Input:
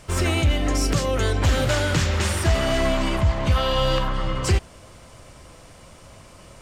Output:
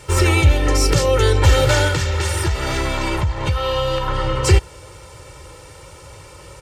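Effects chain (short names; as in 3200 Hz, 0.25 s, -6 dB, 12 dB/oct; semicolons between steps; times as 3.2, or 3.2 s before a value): HPF 49 Hz; comb 2.2 ms, depth 99%; 1.87–4.08 compressor, threshold -20 dBFS, peak gain reduction 9 dB; gain +3.5 dB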